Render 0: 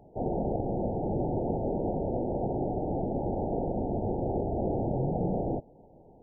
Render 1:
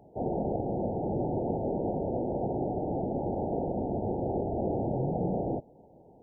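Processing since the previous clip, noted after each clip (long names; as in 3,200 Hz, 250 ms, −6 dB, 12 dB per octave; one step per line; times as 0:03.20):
high-pass filter 79 Hz 6 dB per octave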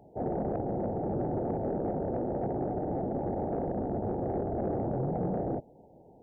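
soft clipping −22 dBFS, distortion −22 dB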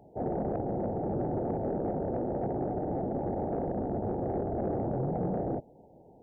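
no processing that can be heard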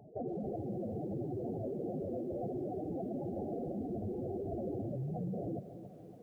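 expanding power law on the bin magnitudes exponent 3.1
downward compressor 2.5 to 1, threshold −39 dBFS, peak gain reduction 7.5 dB
feedback echo at a low word length 280 ms, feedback 55%, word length 11 bits, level −11.5 dB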